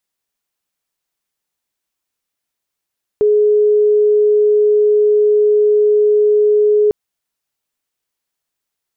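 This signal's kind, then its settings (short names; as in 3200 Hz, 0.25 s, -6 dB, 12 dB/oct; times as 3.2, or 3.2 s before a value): tone sine 420 Hz -8.5 dBFS 3.70 s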